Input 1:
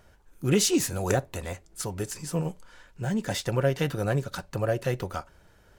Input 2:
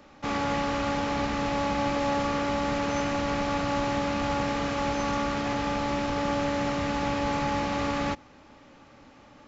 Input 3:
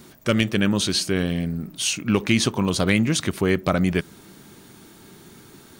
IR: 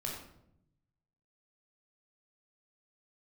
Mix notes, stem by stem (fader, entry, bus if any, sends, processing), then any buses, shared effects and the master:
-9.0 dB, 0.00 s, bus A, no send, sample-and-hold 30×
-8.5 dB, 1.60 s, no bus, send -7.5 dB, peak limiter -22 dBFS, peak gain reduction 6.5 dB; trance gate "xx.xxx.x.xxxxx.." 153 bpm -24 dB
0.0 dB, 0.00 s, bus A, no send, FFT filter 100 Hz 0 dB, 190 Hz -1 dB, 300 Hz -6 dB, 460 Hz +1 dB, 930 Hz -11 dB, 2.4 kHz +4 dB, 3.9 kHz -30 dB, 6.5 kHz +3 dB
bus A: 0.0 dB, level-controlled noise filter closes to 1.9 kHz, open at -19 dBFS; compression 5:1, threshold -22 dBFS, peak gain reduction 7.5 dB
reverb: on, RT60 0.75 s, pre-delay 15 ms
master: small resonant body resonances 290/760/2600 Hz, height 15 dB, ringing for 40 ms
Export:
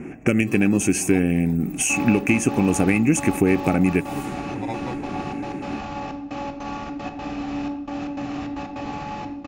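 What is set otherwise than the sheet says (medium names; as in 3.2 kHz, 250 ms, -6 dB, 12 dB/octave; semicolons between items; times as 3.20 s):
stem 2: send -7.5 dB -> -1.5 dB; stem 3 0.0 dB -> +9.5 dB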